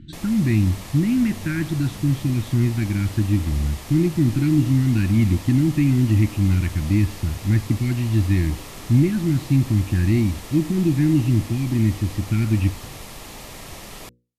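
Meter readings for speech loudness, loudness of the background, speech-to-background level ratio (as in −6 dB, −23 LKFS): −20.5 LKFS, −37.5 LKFS, 17.0 dB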